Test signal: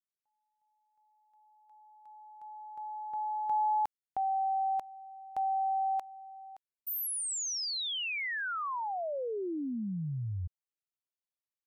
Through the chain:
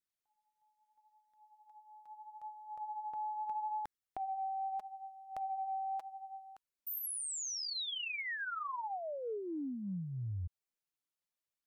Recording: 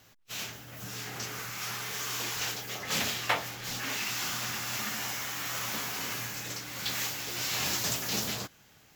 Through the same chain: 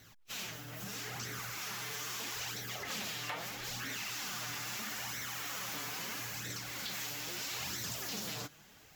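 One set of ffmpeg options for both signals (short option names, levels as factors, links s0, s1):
-af "flanger=delay=0.5:depth=6.4:regen=20:speed=0.77:shape=sinusoidal,acompressor=threshold=0.00794:ratio=4:attack=4.5:release=65:knee=6:detection=rms,volume=1.58"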